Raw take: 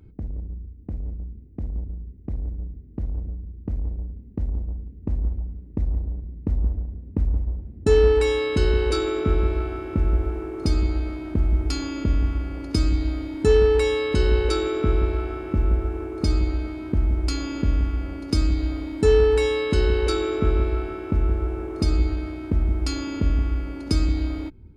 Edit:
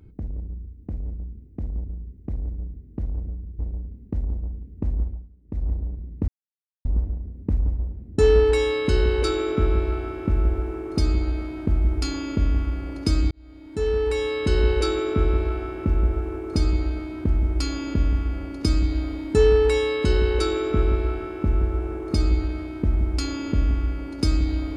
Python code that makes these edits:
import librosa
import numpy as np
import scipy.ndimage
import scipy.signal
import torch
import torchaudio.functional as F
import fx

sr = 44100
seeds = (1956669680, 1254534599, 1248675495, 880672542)

y = fx.edit(x, sr, fx.cut(start_s=3.59, length_s=0.25),
    fx.fade_down_up(start_s=5.27, length_s=0.67, db=-14.5, fade_s=0.26),
    fx.insert_silence(at_s=6.53, length_s=0.57),
    fx.fade_in_span(start_s=12.99, length_s=1.29), tone=tone)